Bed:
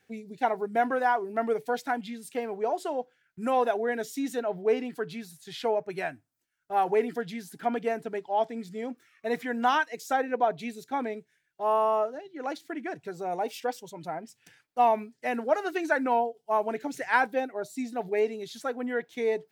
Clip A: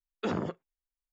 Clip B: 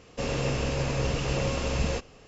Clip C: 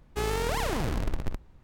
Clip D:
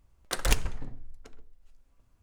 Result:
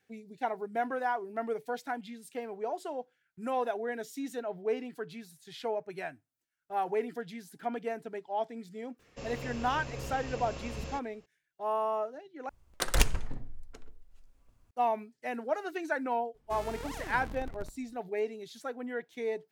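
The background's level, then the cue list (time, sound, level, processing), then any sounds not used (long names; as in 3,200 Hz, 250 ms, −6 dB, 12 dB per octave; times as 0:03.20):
bed −6.5 dB
0:08.99: mix in B −12.5 dB
0:12.49: overwrite with D
0:16.34: mix in C −12.5 dB
not used: A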